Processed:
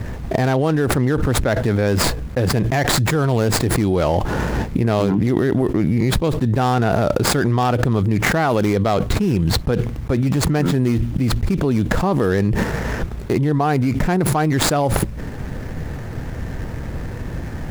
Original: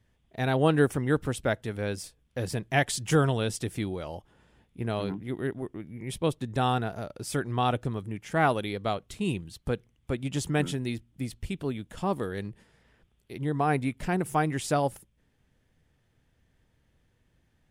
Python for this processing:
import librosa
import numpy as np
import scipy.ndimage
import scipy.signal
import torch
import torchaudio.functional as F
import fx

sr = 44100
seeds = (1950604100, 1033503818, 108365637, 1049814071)

y = scipy.ndimage.median_filter(x, 15, mode='constant')
y = fx.env_flatten(y, sr, amount_pct=100)
y = y * 10.0 ** (1.5 / 20.0)